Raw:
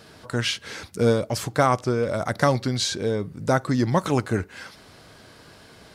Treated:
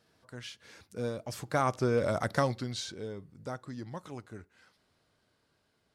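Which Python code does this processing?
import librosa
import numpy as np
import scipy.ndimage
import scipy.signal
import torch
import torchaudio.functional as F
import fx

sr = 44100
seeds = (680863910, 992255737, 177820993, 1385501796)

y = fx.doppler_pass(x, sr, speed_mps=10, closest_m=2.7, pass_at_s=2.03)
y = y * librosa.db_to_amplitude(-3.5)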